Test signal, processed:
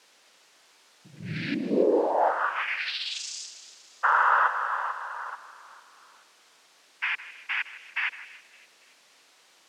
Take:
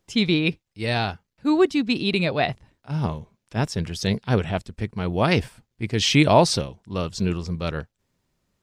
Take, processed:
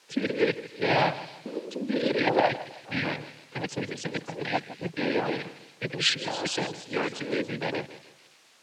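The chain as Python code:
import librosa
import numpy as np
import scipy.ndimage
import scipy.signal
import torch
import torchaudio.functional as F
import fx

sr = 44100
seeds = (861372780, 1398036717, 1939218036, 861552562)

p1 = fx.rattle_buzz(x, sr, strikes_db=-28.0, level_db=-14.0)
p2 = fx.level_steps(p1, sr, step_db=21)
p3 = p1 + (p2 * 10.0 ** (-0.5 / 20.0))
p4 = p3 + 0.36 * np.pad(p3, (int(2.6 * sr / 1000.0), 0))[:len(p3)]
p5 = fx.hpss(p4, sr, part='harmonic', gain_db=5)
p6 = fx.tilt_eq(p5, sr, slope=-2.0)
p7 = fx.spec_gate(p6, sr, threshold_db=-25, keep='strong')
p8 = fx.over_compress(p7, sr, threshold_db=-13.0, ratio=-0.5)
p9 = fx.noise_vocoder(p8, sr, seeds[0], bands=8)
p10 = fx.dmg_noise_colour(p9, sr, seeds[1], colour='white', level_db=-48.0)
p11 = fx.bandpass_edges(p10, sr, low_hz=330.0, high_hz=5800.0)
p12 = p11 + fx.echo_wet_highpass(p11, sr, ms=282, feedback_pct=48, hz=3700.0, wet_db=-12.0, dry=0)
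p13 = fx.echo_warbled(p12, sr, ms=159, feedback_pct=34, rate_hz=2.8, cents=52, wet_db=-15.5)
y = p13 * 10.0 ** (-6.5 / 20.0)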